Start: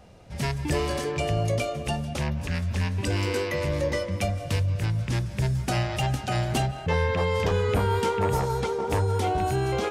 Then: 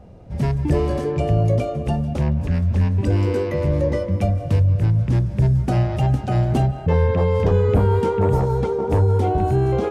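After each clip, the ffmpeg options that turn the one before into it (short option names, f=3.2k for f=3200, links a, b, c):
-af "tiltshelf=f=1.1k:g=9"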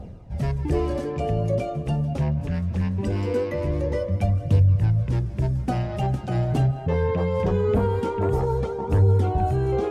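-af "areverse,acompressor=mode=upward:threshold=-25dB:ratio=2.5,areverse,flanger=delay=0.2:depth=7.4:regen=38:speed=0.22:shape=triangular"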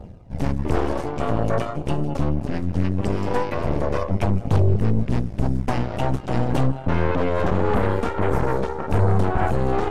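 -af "aeval=exprs='0.398*(cos(1*acos(clip(val(0)/0.398,-1,1)))-cos(1*PI/2))+0.112*(cos(8*acos(clip(val(0)/0.398,-1,1)))-cos(8*PI/2))':c=same,volume=-2dB"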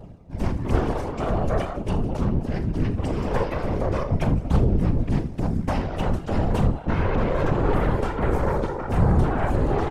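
-af "aecho=1:1:40|79:0.266|0.158,afftfilt=real='hypot(re,im)*cos(2*PI*random(0))':imag='hypot(re,im)*sin(2*PI*random(1))':win_size=512:overlap=0.75,volume=3.5dB"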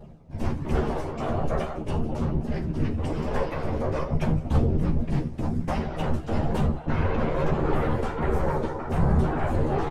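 -filter_complex "[0:a]flanger=delay=4.8:depth=4.3:regen=-44:speed=1.2:shape=sinusoidal,asplit=2[a][b];[b]adelay=13,volume=-4dB[c];[a][c]amix=inputs=2:normalize=0"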